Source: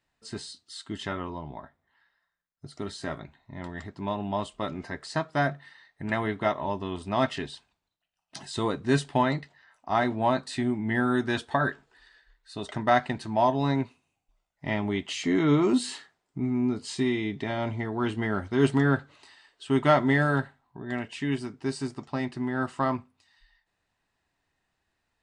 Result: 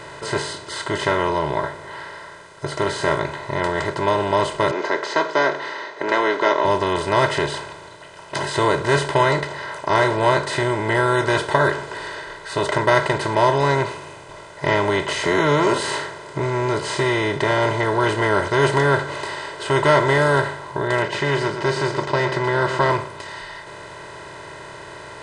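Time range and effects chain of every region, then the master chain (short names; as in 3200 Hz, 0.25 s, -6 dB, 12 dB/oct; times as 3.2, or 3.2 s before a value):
4.71–6.65 Chebyshev band-pass 250–6300 Hz, order 5 + mismatched tape noise reduction decoder only
21.02–22.9 LPF 5800 Hz 24 dB/oct + comb 5.5 ms, depth 38% + echo 0.121 s -17.5 dB
whole clip: per-bin compression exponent 0.4; comb 2 ms, depth 86%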